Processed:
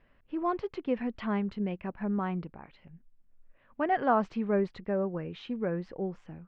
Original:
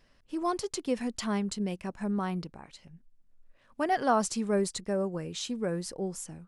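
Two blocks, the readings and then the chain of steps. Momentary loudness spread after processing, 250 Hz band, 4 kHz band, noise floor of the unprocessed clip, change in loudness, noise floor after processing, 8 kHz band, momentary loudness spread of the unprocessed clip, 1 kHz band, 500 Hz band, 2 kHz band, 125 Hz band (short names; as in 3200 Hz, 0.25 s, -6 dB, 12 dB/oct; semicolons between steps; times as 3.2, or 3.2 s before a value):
10 LU, 0.0 dB, -11.5 dB, -65 dBFS, -0.5 dB, -65 dBFS, under -30 dB, 9 LU, 0.0 dB, 0.0 dB, 0.0 dB, 0.0 dB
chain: LPF 2700 Hz 24 dB/oct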